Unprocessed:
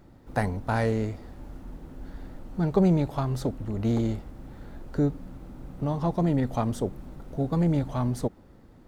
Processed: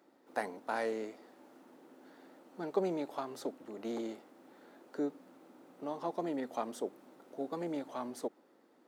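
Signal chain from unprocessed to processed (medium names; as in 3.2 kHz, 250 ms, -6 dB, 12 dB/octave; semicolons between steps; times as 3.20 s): high-pass 290 Hz 24 dB/octave; trim -7 dB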